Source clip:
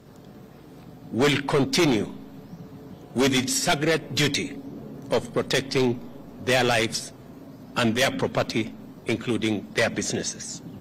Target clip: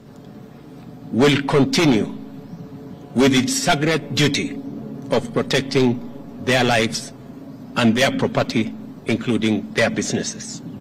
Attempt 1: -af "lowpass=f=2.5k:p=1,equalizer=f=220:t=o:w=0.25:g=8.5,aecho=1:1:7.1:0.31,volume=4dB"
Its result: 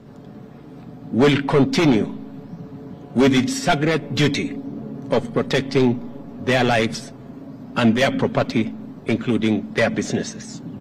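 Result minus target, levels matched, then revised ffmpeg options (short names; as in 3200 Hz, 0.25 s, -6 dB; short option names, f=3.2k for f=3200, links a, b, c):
8000 Hz band -6.0 dB
-af "lowpass=f=7.7k:p=1,equalizer=f=220:t=o:w=0.25:g=8.5,aecho=1:1:7.1:0.31,volume=4dB"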